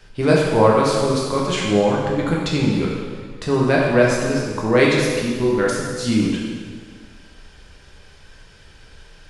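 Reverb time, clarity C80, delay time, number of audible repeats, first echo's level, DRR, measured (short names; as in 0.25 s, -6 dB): 1.7 s, 2.0 dB, none, none, none, -4.0 dB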